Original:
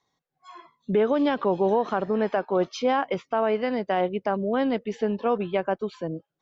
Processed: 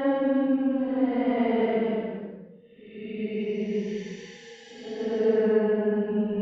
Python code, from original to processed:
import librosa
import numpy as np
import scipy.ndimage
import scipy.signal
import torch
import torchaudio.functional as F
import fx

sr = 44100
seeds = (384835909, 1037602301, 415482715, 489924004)

y = fx.env_lowpass_down(x, sr, base_hz=1900.0, full_db=-19.5)
y = fx.paulstretch(y, sr, seeds[0], factor=13.0, window_s=0.1, from_s=4.62)